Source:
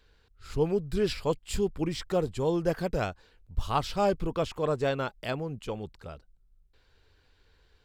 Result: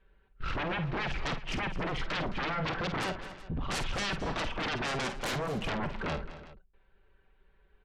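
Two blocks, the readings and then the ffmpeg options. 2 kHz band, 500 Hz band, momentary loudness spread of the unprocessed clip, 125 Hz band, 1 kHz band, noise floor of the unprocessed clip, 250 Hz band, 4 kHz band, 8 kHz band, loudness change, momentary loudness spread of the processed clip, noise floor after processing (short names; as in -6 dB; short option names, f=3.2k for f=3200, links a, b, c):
+6.5 dB, -9.5 dB, 10 LU, -3.0 dB, -1.0 dB, -66 dBFS, -4.5 dB, +3.5 dB, +0.5 dB, -3.5 dB, 6 LU, -67 dBFS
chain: -af "lowpass=f=3k:w=0.5412,lowpass=f=3k:w=1.3066,agate=range=-21dB:threshold=-54dB:ratio=16:detection=peak,aemphasis=mode=reproduction:type=75kf,aecho=1:1:5.2:0.79,acompressor=threshold=-39dB:ratio=3,aeval=exprs='0.0422*sin(PI/2*6.31*val(0)/0.0422)':c=same,aecho=1:1:50|215|272|373:0.335|0.188|0.106|0.119,volume=-2.5dB"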